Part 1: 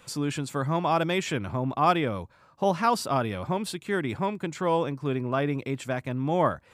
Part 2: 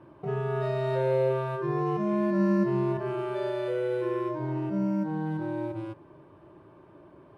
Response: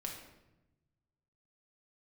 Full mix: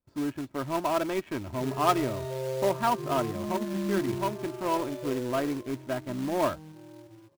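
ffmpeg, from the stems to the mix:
-filter_complex "[0:a]agate=range=0.0794:threshold=0.00251:ratio=16:detection=peak,aecho=1:1:3.1:0.63,adynamicsmooth=sensitivity=1.5:basefreq=560,volume=0.631[s0];[1:a]bandreject=f=184.2:t=h:w=4,bandreject=f=368.4:t=h:w=4,bandreject=f=552.6:t=h:w=4,bandreject=f=736.8:t=h:w=4,adynamicequalizer=threshold=0.00355:dfrequency=1600:dqfactor=0.97:tfrequency=1600:tqfactor=0.97:attack=5:release=100:ratio=0.375:range=3.5:mode=cutabove:tftype=bell,adelay=1350,volume=0.447,afade=t=out:st=5.11:d=0.42:silence=0.354813[s1];[s0][s1]amix=inputs=2:normalize=0,acrusher=bits=3:mode=log:mix=0:aa=0.000001"

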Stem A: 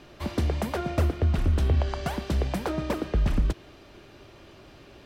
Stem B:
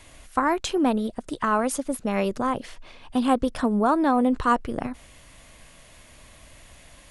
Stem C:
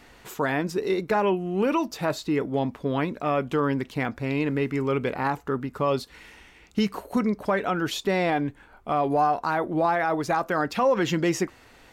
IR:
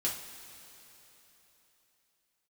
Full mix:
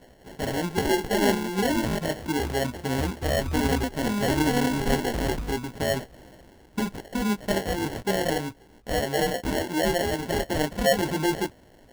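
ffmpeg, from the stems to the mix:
-filter_complex "[0:a]adelay=2000,volume=0.282,asplit=2[s0][s1];[s1]volume=0.2[s2];[1:a]adelay=400,volume=0.531,asplit=3[s3][s4][s5];[s3]atrim=end=1.99,asetpts=PTS-STARTPTS,afade=t=out:st=1.986:d=0.004:c=hsin[s6];[s4]atrim=start=1.99:end=3.23,asetpts=PTS-STARTPTS,volume=0[s7];[s5]atrim=start=3.23,asetpts=PTS-STARTPTS,afade=t=in:d=0.004:c=hsin[s8];[s6][s7][s8]concat=n=3:v=0:a=1,asplit=2[s9][s10];[s10]volume=0.211[s11];[2:a]flanger=delay=15.5:depth=5:speed=0.32,volume=1.19,asplit=2[s12][s13];[s13]apad=whole_len=330973[s14];[s9][s14]sidechaingate=range=0.0224:threshold=0.00631:ratio=16:detection=peak[s15];[3:a]atrim=start_sample=2205[s16];[s2][s16]afir=irnorm=-1:irlink=0[s17];[s11]aecho=0:1:557:1[s18];[s0][s15][s12][s17][s18]amix=inputs=5:normalize=0,acrusher=samples=36:mix=1:aa=0.000001"

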